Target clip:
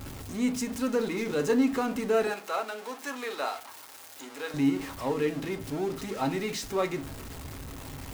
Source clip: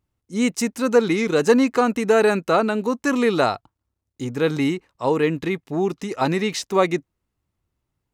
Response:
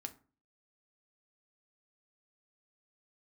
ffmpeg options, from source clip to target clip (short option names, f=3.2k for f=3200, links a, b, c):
-filter_complex "[0:a]aeval=exprs='val(0)+0.5*0.075*sgn(val(0))':c=same,asettb=1/sr,asplit=3[a][b][c];[a]atrim=end=2.274[d];[b]atrim=start=2.27:end=4.54,asetpts=PTS-STARTPTS,afade=t=in:d=0.004:c=qsin,afade=t=out:st=2.266:d=0.004:c=qsin,highpass=640[e];[c]atrim=start=4.536[f];[d][e]acrossfade=d=0.004:c1=hsin:c2=qsin[g];[g][f]acrossfade=d=0.004:c1=qsin:c2=hsin[h];[1:a]atrim=start_sample=2205[i];[h][i]afir=irnorm=-1:irlink=0,volume=-8.5dB"